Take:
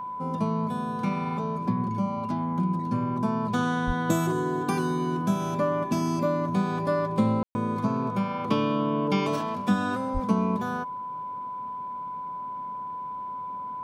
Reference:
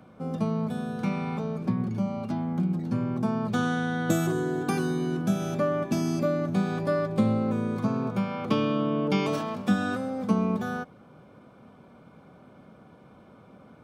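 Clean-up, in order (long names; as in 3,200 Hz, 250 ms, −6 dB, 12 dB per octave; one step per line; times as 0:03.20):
notch filter 1,000 Hz, Q 30
0:03.86–0:03.98: high-pass filter 140 Hz 24 dB per octave
0:10.13–0:10.25: high-pass filter 140 Hz 24 dB per octave
ambience match 0:07.43–0:07.55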